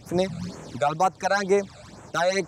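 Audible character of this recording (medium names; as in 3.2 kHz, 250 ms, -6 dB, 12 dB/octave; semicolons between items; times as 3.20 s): phasing stages 12, 2.1 Hz, lowest notch 300–4600 Hz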